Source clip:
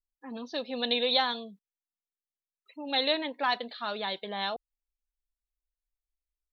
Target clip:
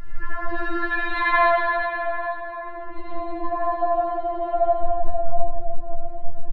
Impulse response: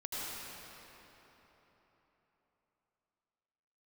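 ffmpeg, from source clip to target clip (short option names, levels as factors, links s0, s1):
-filter_complex "[0:a]aeval=exprs='val(0)+0.5*0.02*sgn(val(0))':c=same,lowshelf=f=230:g=11.5,asoftclip=type=tanh:threshold=0.158,asetnsamples=n=441:p=0,asendcmd='1.37 lowpass f 640',lowpass=f=1500:t=q:w=4.6,aecho=1:1:91:0.447[s0];[1:a]atrim=start_sample=2205[s1];[s0][s1]afir=irnorm=-1:irlink=0,afftfilt=real='re*4*eq(mod(b,16),0)':imag='im*4*eq(mod(b,16),0)':win_size=2048:overlap=0.75,volume=1.78"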